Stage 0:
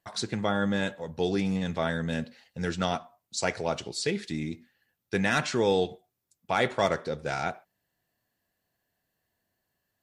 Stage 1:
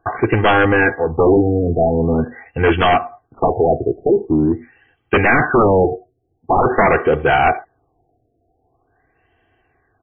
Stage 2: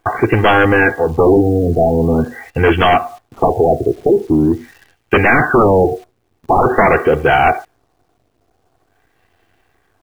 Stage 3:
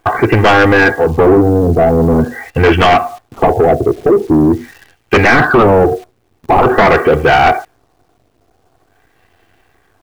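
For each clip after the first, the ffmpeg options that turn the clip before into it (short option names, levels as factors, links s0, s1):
-af "aecho=1:1:2.6:0.9,aeval=exprs='0.299*sin(PI/2*3.98*val(0)/0.299)':c=same,afftfilt=real='re*lt(b*sr/1024,720*pow(3400/720,0.5+0.5*sin(2*PI*0.45*pts/sr)))':imag='im*lt(b*sr/1024,720*pow(3400/720,0.5+0.5*sin(2*PI*0.45*pts/sr)))':win_size=1024:overlap=0.75,volume=1.41"
-filter_complex "[0:a]asplit=2[s0][s1];[s1]acompressor=threshold=0.0891:ratio=8,volume=1[s2];[s0][s2]amix=inputs=2:normalize=0,acrusher=bits=8:dc=4:mix=0:aa=0.000001"
-af "asoftclip=type=tanh:threshold=0.376,volume=1.88"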